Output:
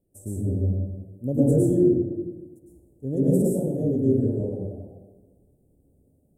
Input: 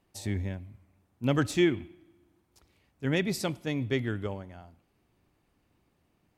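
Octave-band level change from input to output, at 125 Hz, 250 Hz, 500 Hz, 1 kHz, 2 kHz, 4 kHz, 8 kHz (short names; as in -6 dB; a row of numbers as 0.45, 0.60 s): +8.5 dB, +8.5 dB, +8.5 dB, n/a, under -30 dB, under -30 dB, +1.0 dB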